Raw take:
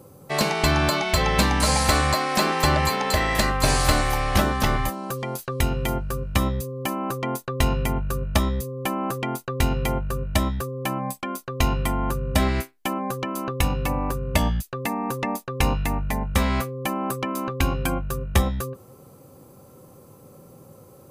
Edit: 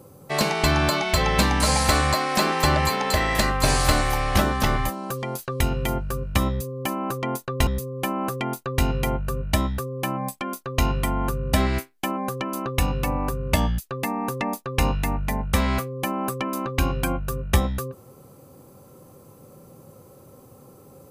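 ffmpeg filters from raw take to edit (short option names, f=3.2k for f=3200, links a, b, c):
-filter_complex "[0:a]asplit=2[a][b];[a]atrim=end=7.672[c];[b]atrim=start=8.488[d];[c][d]acrossfade=d=0.004:c1=hsin:c2=hsin"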